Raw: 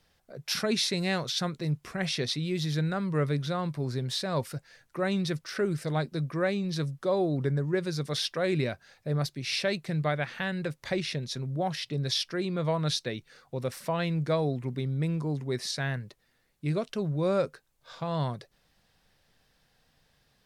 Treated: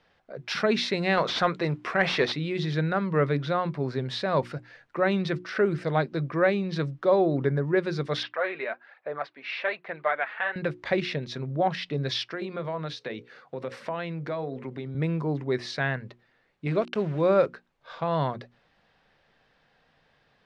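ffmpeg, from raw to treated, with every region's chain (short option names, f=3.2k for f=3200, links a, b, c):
-filter_complex "[0:a]asettb=1/sr,asplit=3[a][b][c];[a]atrim=end=1.174[d];[b]atrim=start=1.17:end=2.32,asetpts=PTS-STARTPTS,afade=t=in:d=0.004:c=qsin,afade=t=out:st=1.146:d=0.004:c=qsin,aemphasis=mode=production:type=50fm,asplit=2[e][f];[f]highpass=f=720:p=1,volume=16dB,asoftclip=type=tanh:threshold=-13dB[g];[e][g]amix=inputs=2:normalize=0,lowpass=f=1.6k:p=1,volume=-6dB[h];[c]atrim=start=2.316[i];[d][h]acrossfade=d=0.004:c1=hsin:c2=qsin[j];[j][i]acrossfade=d=0.004:c1=qsin:c2=hsin,asettb=1/sr,asplit=3[k][l][m];[k]atrim=end=8.234[n];[l]atrim=start=8.23:end=10.56,asetpts=PTS-STARTPTS,afade=t=in:d=0.004:c=qsin,afade=t=out:st=2.326:d=0.004:c=qsin,aphaser=in_gain=1:out_gain=1:delay=4.8:decay=0.46:speed=1.2:type=sinusoidal,highpass=730,lowpass=2.2k[o];[m]atrim=start=10.556[p];[n][o]acrossfade=d=0.004:c1=hsin:c2=qsin[q];[q][p]acrossfade=d=0.004:c1=qsin:c2=hsin,asettb=1/sr,asplit=3[r][s][t];[r]atrim=end=12.244[u];[s]atrim=start=12.24:end=14.95,asetpts=PTS-STARTPTS,afade=t=in:d=0.004:c=qsin,afade=t=out:st=2.706:d=0.004:c=qsin,highpass=120,bandreject=f=60:t=h:w=6,bandreject=f=120:t=h:w=6,bandreject=f=180:t=h:w=6,bandreject=f=240:t=h:w=6,bandreject=f=300:t=h:w=6,bandreject=f=360:t=h:w=6,bandreject=f=420:t=h:w=6,bandreject=f=480:t=h:w=6,bandreject=f=540:t=h:w=6,acompressor=threshold=-34dB:ratio=4:attack=3.2:release=140:knee=1:detection=peak[v];[t]atrim=start=14.946[w];[u][v]acrossfade=d=0.004:c1=hsin:c2=qsin[x];[x][w]acrossfade=d=0.004:c1=qsin:c2=hsin,asettb=1/sr,asplit=3[y][z][aa];[y]atrim=end=16.674[ab];[z]atrim=start=16.67:end=17.46,asetpts=PTS-STARTPTS,afade=t=in:d=0.004:c=qsin,afade=t=out:st=0.786:d=0.004:c=qsin,highpass=f=84:p=1,acompressor=mode=upward:threshold=-31dB:ratio=2.5:attack=3.2:release=140:knee=2.83:detection=peak,aeval=exprs='val(0)*gte(abs(val(0)),0.00708)':c=same[ac];[aa]atrim=start=17.456[ad];[ab][ac]acrossfade=d=0.004:c1=hsin:c2=qsin[ae];[ae][ad]acrossfade=d=0.004:c1=qsin:c2=hsin,lowpass=2.6k,lowshelf=f=150:g=-12,bandreject=f=60:t=h:w=6,bandreject=f=120:t=h:w=6,bandreject=f=180:t=h:w=6,bandreject=f=240:t=h:w=6,bandreject=f=300:t=h:w=6,bandreject=f=360:t=h:w=6,volume=7dB"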